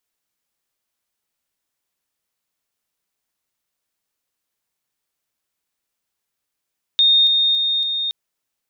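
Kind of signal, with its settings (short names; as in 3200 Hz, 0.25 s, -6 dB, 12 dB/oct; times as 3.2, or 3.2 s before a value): level ladder 3680 Hz -10.5 dBFS, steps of -3 dB, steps 4, 0.28 s 0.00 s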